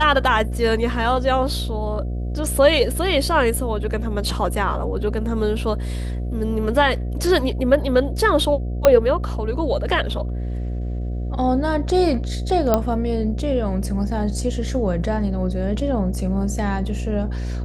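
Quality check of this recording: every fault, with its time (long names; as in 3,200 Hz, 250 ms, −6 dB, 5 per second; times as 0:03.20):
mains buzz 60 Hz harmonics 12 −25 dBFS
0:08.85: click −1 dBFS
0:12.74: click −4 dBFS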